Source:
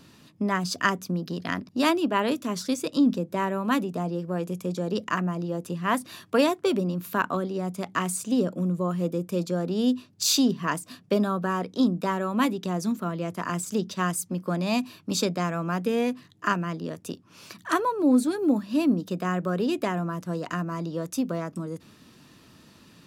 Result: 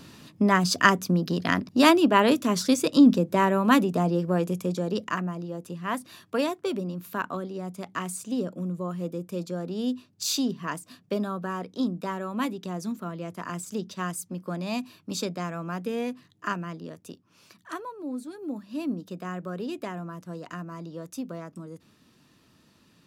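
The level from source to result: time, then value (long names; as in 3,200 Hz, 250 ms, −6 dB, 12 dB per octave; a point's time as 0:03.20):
0:04.29 +5 dB
0:05.48 −5 dB
0:16.64 −5 dB
0:18.19 −14.5 dB
0:18.89 −7.5 dB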